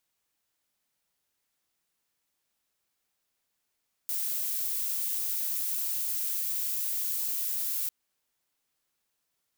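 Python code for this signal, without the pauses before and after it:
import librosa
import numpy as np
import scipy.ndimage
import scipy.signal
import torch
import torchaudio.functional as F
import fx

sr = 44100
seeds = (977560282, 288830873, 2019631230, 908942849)

y = fx.noise_colour(sr, seeds[0], length_s=3.8, colour='violet', level_db=-31.0)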